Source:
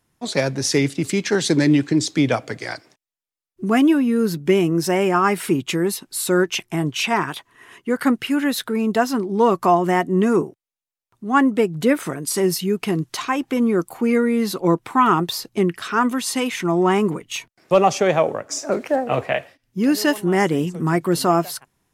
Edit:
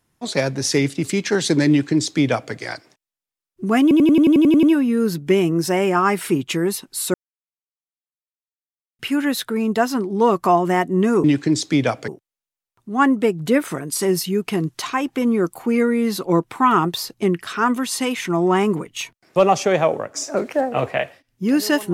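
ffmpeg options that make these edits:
-filter_complex "[0:a]asplit=14[a][b][c][d][e][f][g][h][i][j][k][l][m][n];[a]atrim=end=3.912[o];[b]atrim=start=3.818:end=3.912[p];[c]atrim=start=3.818:end=3.912[q];[d]atrim=start=3.818:end=3.912[r];[e]atrim=start=3.818:end=3.912[s];[f]atrim=start=3.818:end=3.912[t];[g]atrim=start=3.818:end=3.912[u];[h]atrim=start=3.818:end=3.912[v];[i]atrim=start=3.818:end=3.912[w];[j]atrim=start=3.818:end=6.33,asetpts=PTS-STARTPTS,afade=t=out:st=2.508:d=0.004:c=hsin[x];[k]atrim=start=6.33:end=8.18,asetpts=PTS-STARTPTS,volume=0[y];[l]atrim=start=8.18:end=10.432,asetpts=PTS-STARTPTS,afade=t=in:d=0.004:c=hsin[z];[m]atrim=start=1.688:end=2.532[aa];[n]atrim=start=10.428[ab];[o][p]acrossfade=d=0.004:c1=hsin:c2=hsin[ac];[ac][q]acrossfade=d=0.004:c1=hsin:c2=hsin[ad];[ad][r]acrossfade=d=0.004:c1=hsin:c2=hsin[ae];[ae][s]acrossfade=d=0.004:c1=hsin:c2=hsin[af];[af][t]acrossfade=d=0.004:c1=hsin:c2=hsin[ag];[ag][u]acrossfade=d=0.004:c1=hsin:c2=hsin[ah];[ah][v]acrossfade=d=0.004:c1=hsin:c2=hsin[ai];[ai][w]acrossfade=d=0.004:c1=hsin:c2=hsin[aj];[x][y][z]concat=n=3:v=0:a=1[ak];[aj][ak]acrossfade=d=0.004:c1=hsin:c2=hsin[al];[al][aa]acrossfade=d=0.004:c1=hsin:c2=hsin[am];[am][ab]acrossfade=d=0.004:c1=hsin:c2=hsin"

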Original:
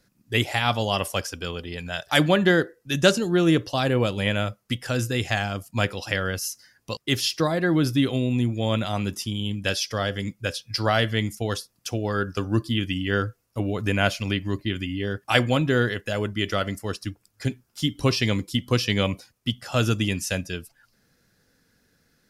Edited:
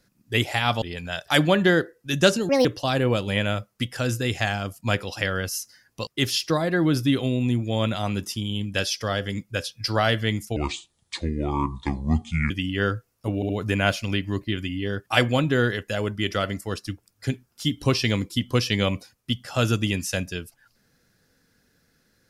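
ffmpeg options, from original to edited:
-filter_complex "[0:a]asplit=8[a][b][c][d][e][f][g][h];[a]atrim=end=0.822[i];[b]atrim=start=1.628:end=3.304[j];[c]atrim=start=3.3:end=3.55,asetpts=PTS-STARTPTS,asetrate=68796,aresample=44100,atrim=end_sample=7067,asetpts=PTS-STARTPTS[k];[d]atrim=start=3.546:end=11.464[l];[e]atrim=start=11.46:end=12.82,asetpts=PTS-STARTPTS,asetrate=30870,aresample=44100[m];[f]atrim=start=12.816:end=13.742[n];[g]atrim=start=13.668:end=13.742[o];[h]atrim=start=13.668[p];[i][j]acrossfade=d=0.004:c1=hsin:c2=hsin[q];[q][k]acrossfade=d=0.004:c1=hsin:c2=hsin[r];[r][l]acrossfade=d=0.004:c1=hsin:c2=hsin[s];[s][m]acrossfade=d=0.004:c1=hsin:c2=hsin[t];[t][n]acrossfade=d=0.004:c1=hsin:c2=hsin[u];[u][o]acrossfade=d=0.004:c1=hsin:c2=hsin[v];[v][p]acrossfade=d=0.004:c1=hsin:c2=hsin"

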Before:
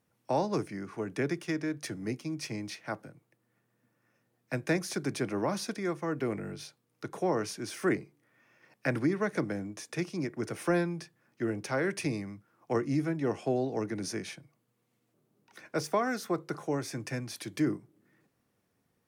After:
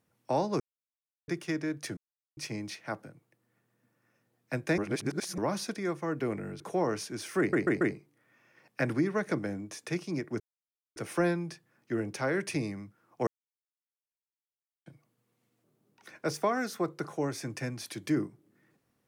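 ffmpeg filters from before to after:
-filter_complex "[0:a]asplit=14[a][b][c][d][e][f][g][h][i][j][k][l][m][n];[a]atrim=end=0.6,asetpts=PTS-STARTPTS,afade=t=out:st=0.596:d=0.004:c=hsin[o];[b]atrim=start=0.6:end=1.28,asetpts=PTS-STARTPTS,volume=0[p];[c]atrim=start=1.28:end=1.97,asetpts=PTS-STARTPTS,afade=t=in:d=0.004:c=hsin,afade=t=out:st=0.686:d=0.004:c=hsin[q];[d]atrim=start=1.97:end=2.37,asetpts=PTS-STARTPTS,volume=0[r];[e]atrim=start=2.37:end=4.782,asetpts=PTS-STARTPTS,afade=t=in:d=0.004:c=hsin[s];[f]atrim=start=4.778:end=5.382,asetpts=PTS-STARTPTS,areverse[t];[g]atrim=start=5.378:end=6.602[u];[h]atrim=start=7.078:end=8.012[v];[i]atrim=start=7.868:end=8.012[w];[j]atrim=start=7.868:end=8.012[x];[k]atrim=start=7.868:end=10.46,asetpts=PTS-STARTPTS,afade=t=out:st=2.588:d=0.004:c=hsin,apad=pad_dur=0.56[y];[l]atrim=start=10.46:end=12.77,asetpts=PTS-STARTPTS,afade=t=in:d=0.004:c=hsin,afade=t=out:st=2.306:d=0.004:c=hsin[z];[m]atrim=start=12.77:end=14.36,asetpts=PTS-STARTPTS,volume=0[aa];[n]atrim=start=14.36,asetpts=PTS-STARTPTS,afade=t=in:d=0.004:c=hsin[ab];[o][p][q][r][s]concat=n=5:v=0:a=1[ac];[ac][t]acrossfade=d=0.004:c1=hsin:c2=hsin[ad];[ad][u]acrossfade=d=0.004:c1=hsin:c2=hsin[ae];[ae][v]acrossfade=d=0.004:c1=hsin:c2=hsin[af];[af][w]acrossfade=d=0.004:c1=hsin:c2=hsin[ag];[ag][x]acrossfade=d=0.004:c1=hsin:c2=hsin[ah];[y][z][aa][ab]concat=n=4:v=0:a=1[ai];[ah][ai]acrossfade=d=0.004:c1=hsin:c2=hsin"

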